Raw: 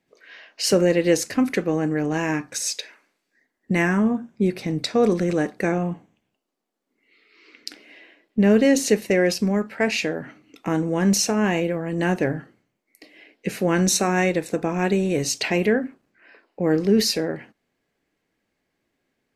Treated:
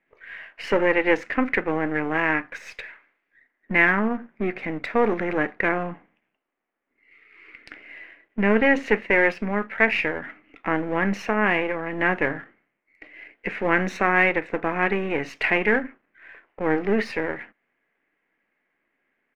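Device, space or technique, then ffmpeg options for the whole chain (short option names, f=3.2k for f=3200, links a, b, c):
crystal radio: -af "highpass=210,lowpass=2.6k,aeval=exprs='if(lt(val(0),0),0.447*val(0),val(0))':c=same,firequalizer=gain_entry='entry(400,0);entry(2000,12);entry(4100,-6)':delay=0.05:min_phase=1"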